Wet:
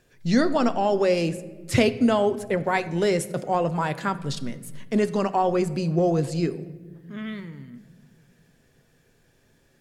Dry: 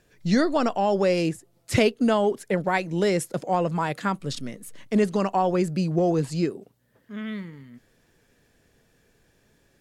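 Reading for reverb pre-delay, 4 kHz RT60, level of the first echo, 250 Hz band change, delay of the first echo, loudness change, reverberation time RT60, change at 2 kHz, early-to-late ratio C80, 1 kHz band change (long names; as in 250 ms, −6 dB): 7 ms, 0.75 s, no echo audible, +0.5 dB, no echo audible, +0.5 dB, 1.4 s, +0.5 dB, 17.0 dB, +0.5 dB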